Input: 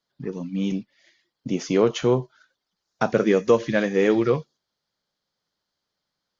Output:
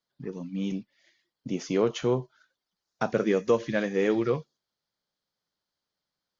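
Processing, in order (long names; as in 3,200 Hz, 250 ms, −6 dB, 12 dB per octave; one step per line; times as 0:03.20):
level −5.5 dB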